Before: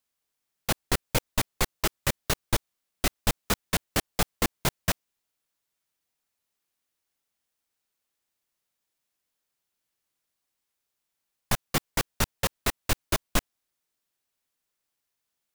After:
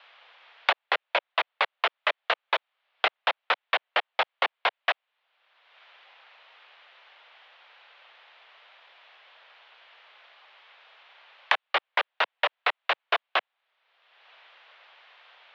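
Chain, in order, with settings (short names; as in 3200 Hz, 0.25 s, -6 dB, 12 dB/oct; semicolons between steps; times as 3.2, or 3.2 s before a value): mistuned SSB +52 Hz 530–3400 Hz; three-band squash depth 100%; gain +6 dB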